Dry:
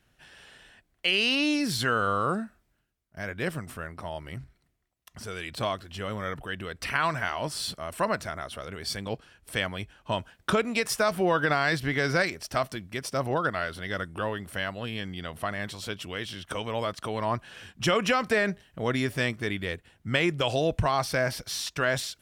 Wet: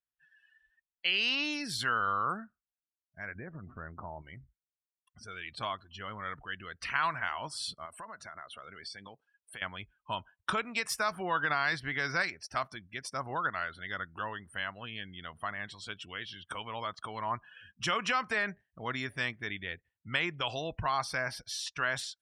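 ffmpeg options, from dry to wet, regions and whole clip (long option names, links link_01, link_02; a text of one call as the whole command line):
ffmpeg -i in.wav -filter_complex "[0:a]asettb=1/sr,asplit=3[link_01][link_02][link_03];[link_01]atrim=end=3.354[link_04];[link_02]atrim=start=3.35:end=4.22,asetpts=PTS-STARTPTS,afade=type=in:duration=0.004:curve=qsin,afade=type=out:start_time=0.866:duration=0.004:curve=qsin,lowpass=frequency=2600:width=0.5412,lowpass=frequency=2600:width=1.3066,tiltshelf=frequency=1300:gain=7.5,acompressor=threshold=-27dB:ratio=12:attack=3.2:release=140:knee=1:detection=peak[link_05];[link_03]atrim=start=4.216[link_06];[link_04][link_05]acrossfade=duration=0.004:curve1=hsin:curve2=qsin[link_07];[link_07][link_06]acrossfade=duration=0.004:curve1=qsin:curve2=hsin,asettb=1/sr,asplit=3[link_08][link_09][link_10];[link_08]atrim=end=7.854[link_11];[link_09]atrim=start=7.85:end=9.62,asetpts=PTS-STARTPTS,afade=type=in:duration=0.004:curve=qsin,afade=type=out:start_time=1.766:duration=0.004:curve=qsin,highpass=frequency=170:poles=1,acompressor=threshold=-33dB:ratio=16:attack=3.2:release=140:knee=1:detection=peak[link_12];[link_10]atrim=start=9.616[link_13];[link_11][link_12]acrossfade=duration=0.004:curve1=hsin:curve2=qsin[link_14];[link_14][link_13]acrossfade=duration=0.004:curve1=qsin:curve2=hsin,afftdn=noise_reduction=29:noise_floor=-43,lowshelf=frequency=730:width_type=q:width=1.5:gain=-7,volume=-4.5dB" out.wav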